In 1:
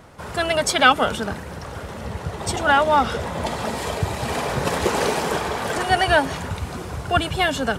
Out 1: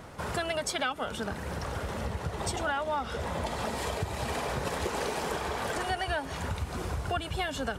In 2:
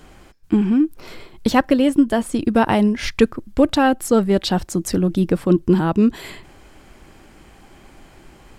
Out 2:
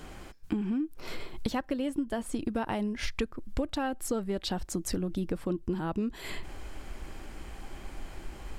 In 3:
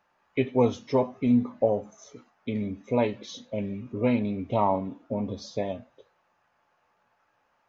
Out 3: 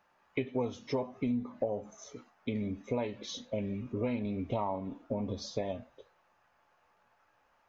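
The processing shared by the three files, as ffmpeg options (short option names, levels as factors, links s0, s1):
-af "asubboost=boost=2.5:cutoff=73,acompressor=threshold=0.0316:ratio=5"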